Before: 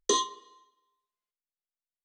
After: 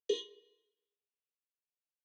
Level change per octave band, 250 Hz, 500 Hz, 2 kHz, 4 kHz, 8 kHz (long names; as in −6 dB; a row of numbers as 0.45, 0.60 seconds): −11.0, −4.0, −14.5, −11.0, −23.0 decibels